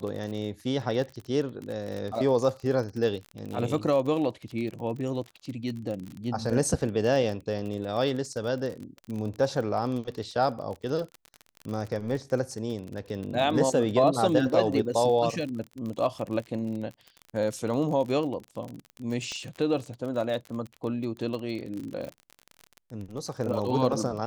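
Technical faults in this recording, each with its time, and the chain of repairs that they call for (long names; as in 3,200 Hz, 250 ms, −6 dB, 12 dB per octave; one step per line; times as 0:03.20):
surface crackle 37 per second −33 dBFS
0:19.32: click −23 dBFS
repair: click removal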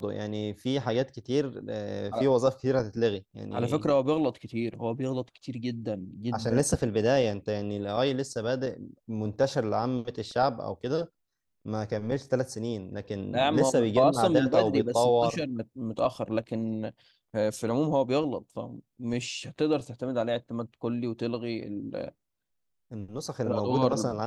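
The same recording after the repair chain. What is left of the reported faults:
0:19.32: click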